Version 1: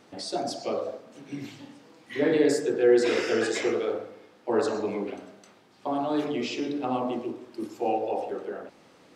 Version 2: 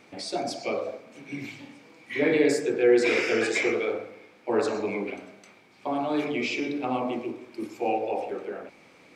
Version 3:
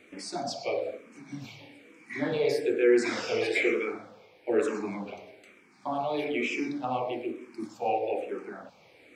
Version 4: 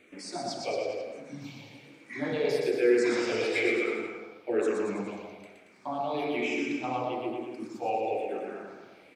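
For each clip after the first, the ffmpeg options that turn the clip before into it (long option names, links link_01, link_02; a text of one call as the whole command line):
ffmpeg -i in.wav -af "equalizer=frequency=2300:width_type=o:width=0.22:gain=15" out.wav
ffmpeg -i in.wav -filter_complex "[0:a]asplit=2[link_01][link_02];[link_02]afreqshift=-1.1[link_03];[link_01][link_03]amix=inputs=2:normalize=1" out.wav
ffmpeg -i in.wav -af "aecho=1:1:120|228|325.2|412.7|491.4:0.631|0.398|0.251|0.158|0.1,volume=-2.5dB" out.wav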